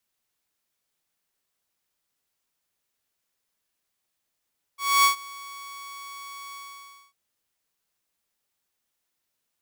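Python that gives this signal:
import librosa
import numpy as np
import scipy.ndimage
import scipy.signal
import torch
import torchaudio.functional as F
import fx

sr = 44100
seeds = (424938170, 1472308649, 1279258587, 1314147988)

y = fx.adsr_tone(sr, wave='saw', hz=1120.0, attack_ms=262.0, decay_ms=112.0, sustain_db=-23.5, held_s=1.76, release_ms=589.0, level_db=-12.0)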